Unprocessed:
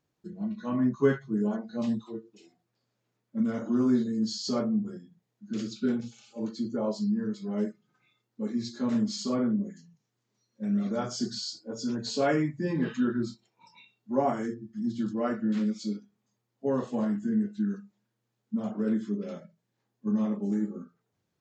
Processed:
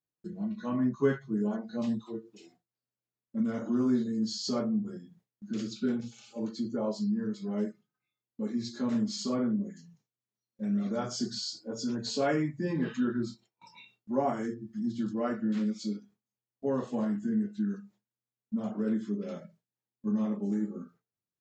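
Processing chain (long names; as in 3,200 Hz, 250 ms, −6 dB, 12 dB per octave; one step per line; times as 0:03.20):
noise gate with hold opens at −53 dBFS
in parallel at +0.5 dB: downward compressor, threshold −39 dBFS, peak gain reduction 20 dB
on the sum: level −4 dB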